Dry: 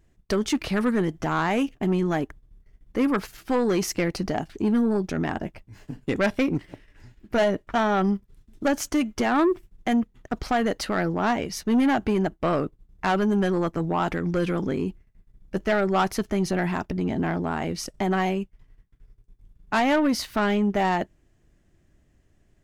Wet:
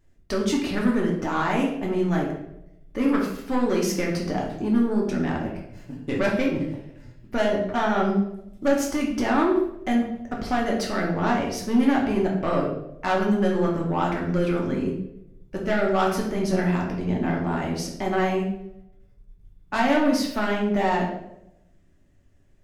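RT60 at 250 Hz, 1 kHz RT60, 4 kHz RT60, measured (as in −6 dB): 0.95 s, 0.70 s, 0.60 s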